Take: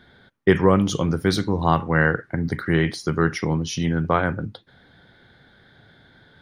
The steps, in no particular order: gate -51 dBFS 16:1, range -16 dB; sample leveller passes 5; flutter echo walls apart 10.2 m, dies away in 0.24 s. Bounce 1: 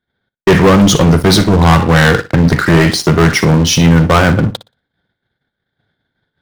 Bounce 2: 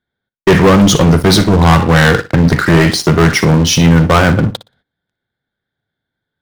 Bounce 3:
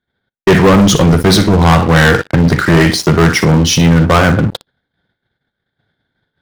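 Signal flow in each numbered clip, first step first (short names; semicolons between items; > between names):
gate > sample leveller > flutter echo; sample leveller > flutter echo > gate; flutter echo > gate > sample leveller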